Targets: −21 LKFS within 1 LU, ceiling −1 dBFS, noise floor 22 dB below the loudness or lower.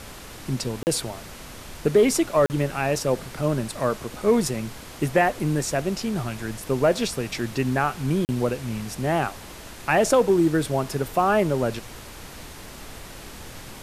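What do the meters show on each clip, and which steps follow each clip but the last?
number of dropouts 3; longest dropout 39 ms; background noise floor −41 dBFS; target noise floor −46 dBFS; integrated loudness −24.0 LKFS; sample peak −8.0 dBFS; target loudness −21.0 LKFS
→ repair the gap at 0:00.83/0:02.46/0:08.25, 39 ms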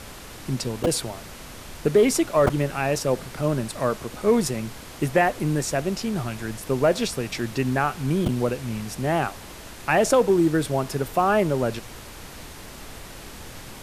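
number of dropouts 0; background noise floor −41 dBFS; target noise floor −46 dBFS
→ noise reduction from a noise print 6 dB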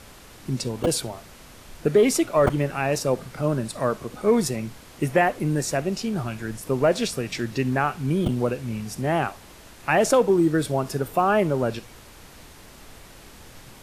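background noise floor −47 dBFS; integrated loudness −24.0 LKFS; sample peak −6.5 dBFS; target loudness −21.0 LKFS
→ level +3 dB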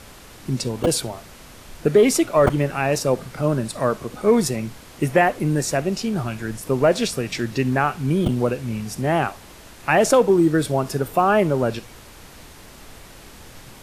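integrated loudness −21.0 LKFS; sample peak −3.5 dBFS; background noise floor −44 dBFS

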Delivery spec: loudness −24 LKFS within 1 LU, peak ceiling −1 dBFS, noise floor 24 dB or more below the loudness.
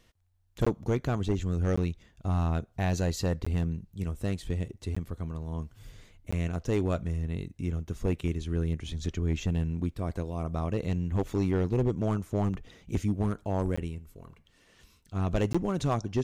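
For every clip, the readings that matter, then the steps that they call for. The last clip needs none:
share of clipped samples 1.4%; peaks flattened at −20.0 dBFS; number of dropouts 7; longest dropout 15 ms; integrated loudness −31.0 LKFS; sample peak −20.0 dBFS; target loudness −24.0 LKFS
→ clipped peaks rebuilt −20 dBFS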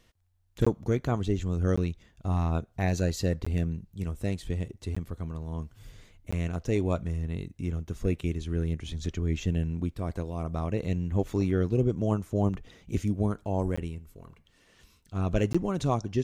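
share of clipped samples 0.0%; number of dropouts 7; longest dropout 15 ms
→ repair the gap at 0:00.65/0:01.76/0:03.45/0:04.95/0:06.31/0:13.76/0:15.53, 15 ms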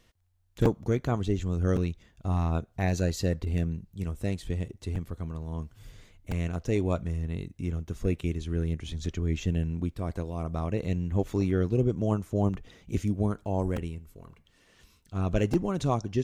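number of dropouts 0; integrated loudness −30.5 LKFS; sample peak −8.0 dBFS; target loudness −24.0 LKFS
→ level +6.5 dB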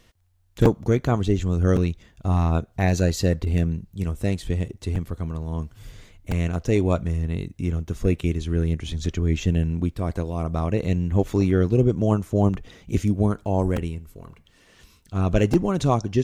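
integrated loudness −24.0 LKFS; sample peak −1.5 dBFS; background noise floor −58 dBFS

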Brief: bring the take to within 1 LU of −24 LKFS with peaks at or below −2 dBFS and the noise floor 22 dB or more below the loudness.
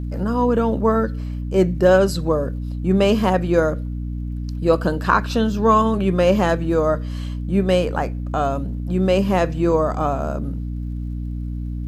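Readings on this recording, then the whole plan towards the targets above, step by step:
crackle rate 31 per second; mains hum 60 Hz; hum harmonics up to 300 Hz; level of the hum −24 dBFS; integrated loudness −20.0 LKFS; sample peak −1.5 dBFS; target loudness −24.0 LKFS
→ click removal
mains-hum notches 60/120/180/240/300 Hz
level −4 dB

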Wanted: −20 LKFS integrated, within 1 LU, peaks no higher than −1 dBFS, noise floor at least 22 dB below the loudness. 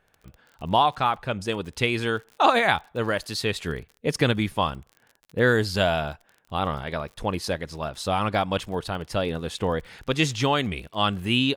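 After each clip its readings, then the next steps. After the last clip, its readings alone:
crackle rate 40 per second; integrated loudness −25.5 LKFS; sample peak −4.5 dBFS; target loudness −20.0 LKFS
→ click removal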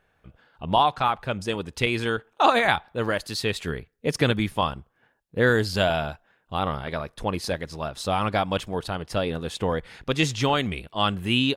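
crackle rate 0 per second; integrated loudness −25.5 LKFS; sample peak −4.5 dBFS; target loudness −20.0 LKFS
→ level +5.5 dB
brickwall limiter −1 dBFS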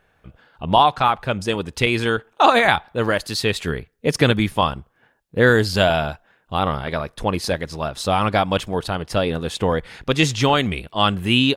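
integrated loudness −20.0 LKFS; sample peak −1.0 dBFS; background noise floor −63 dBFS

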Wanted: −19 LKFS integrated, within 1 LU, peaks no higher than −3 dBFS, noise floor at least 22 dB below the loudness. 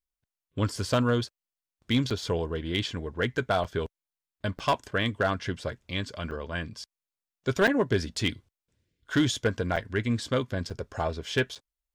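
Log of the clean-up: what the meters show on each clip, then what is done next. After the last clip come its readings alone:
share of clipped samples 0.4%; peaks flattened at −16.5 dBFS; number of dropouts 8; longest dropout 6.5 ms; integrated loudness −29.0 LKFS; sample peak −16.5 dBFS; target loudness −19.0 LKFS
→ clipped peaks rebuilt −16.5 dBFS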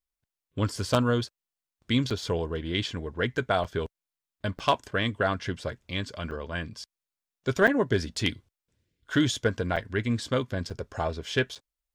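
share of clipped samples 0.0%; number of dropouts 8; longest dropout 6.5 ms
→ repair the gap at 0:02.10/0:03.64/0:04.59/0:06.31/0:07.67/0:09.76/0:10.70/0:11.55, 6.5 ms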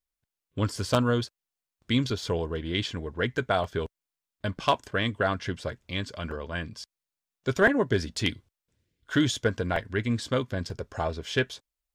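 number of dropouts 0; integrated loudness −28.5 LKFS; sample peak −7.5 dBFS; target loudness −19.0 LKFS
→ level +9.5 dB
brickwall limiter −3 dBFS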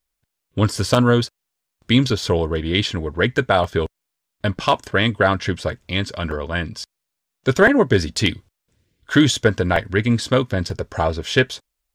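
integrated loudness −19.5 LKFS; sample peak −3.0 dBFS; background noise floor −80 dBFS

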